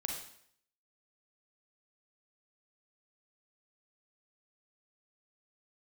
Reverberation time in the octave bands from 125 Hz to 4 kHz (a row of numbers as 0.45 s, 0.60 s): 0.65 s, 0.65 s, 0.65 s, 0.65 s, 0.65 s, 0.65 s